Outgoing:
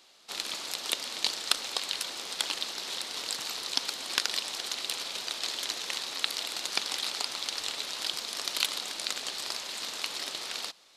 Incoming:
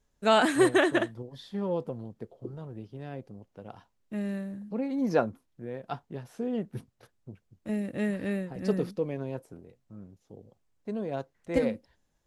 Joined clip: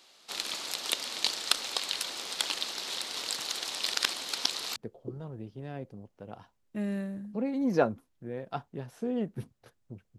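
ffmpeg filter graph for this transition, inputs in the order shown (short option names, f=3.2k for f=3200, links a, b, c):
-filter_complex "[0:a]apad=whole_dur=10.18,atrim=end=10.18,asplit=2[a][b];[a]atrim=end=3.472[c];[b]atrim=start=3.468:end=4.762,asetpts=PTS-STARTPTS,areverse[d];[1:a]atrim=start=2.128:end=7.55[e];[c][d]acrossfade=d=0.004:c1=hsin:c2=hsin[f];[f][e]acrossfade=d=0.004:c1=hsin:c2=hsin"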